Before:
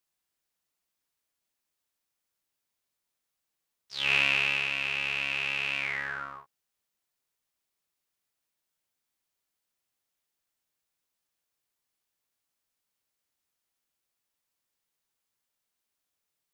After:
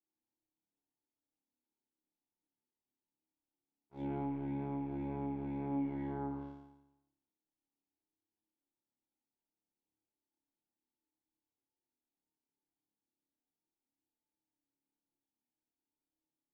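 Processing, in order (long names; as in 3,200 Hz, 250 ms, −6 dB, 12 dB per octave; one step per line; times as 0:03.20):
formant resonators in series u
leveller curve on the samples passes 2
flutter between parallel walls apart 4.9 metres, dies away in 0.92 s
treble cut that deepens with the level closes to 2,000 Hz, closed at −40.5 dBFS
downward compressor, threshold −43 dBFS, peak gain reduction 9 dB
flanger 0.22 Hz, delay 7.6 ms, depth 5.8 ms, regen +74%
level +12.5 dB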